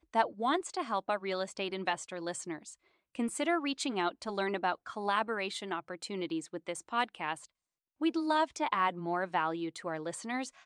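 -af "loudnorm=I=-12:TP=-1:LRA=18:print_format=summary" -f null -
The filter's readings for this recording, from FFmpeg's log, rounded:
Input Integrated:    -34.0 LUFS
Input True Peak:     -14.0 dBTP
Input LRA:             2.2 LU
Input Threshold:     -44.2 LUFS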